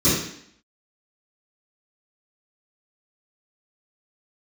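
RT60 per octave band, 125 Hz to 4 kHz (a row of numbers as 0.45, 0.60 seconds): 0.55, 0.70, 0.65, 0.65, 0.70, 0.70 seconds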